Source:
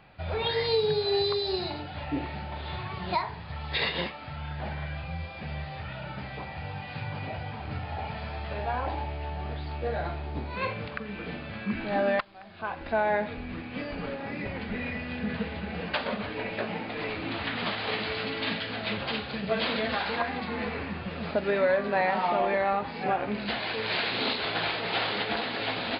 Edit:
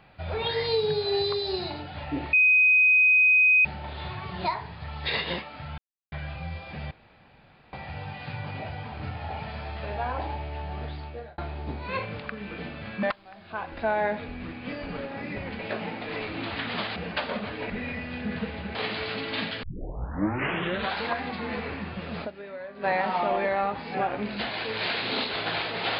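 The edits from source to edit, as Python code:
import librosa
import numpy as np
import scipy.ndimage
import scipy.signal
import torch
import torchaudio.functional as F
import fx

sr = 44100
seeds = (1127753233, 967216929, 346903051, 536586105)

y = fx.edit(x, sr, fx.insert_tone(at_s=2.33, length_s=1.32, hz=2510.0, db=-15.5),
    fx.silence(start_s=4.46, length_s=0.34),
    fx.room_tone_fill(start_s=5.59, length_s=0.82),
    fx.fade_out_span(start_s=9.58, length_s=0.48),
    fx.cut(start_s=11.71, length_s=0.41),
    fx.swap(start_s=14.68, length_s=1.05, other_s=16.47, other_length_s=1.37),
    fx.tape_start(start_s=18.72, length_s=1.32),
    fx.fade_down_up(start_s=21.33, length_s=0.61, db=-15.0, fade_s=0.3, curve='exp'), tone=tone)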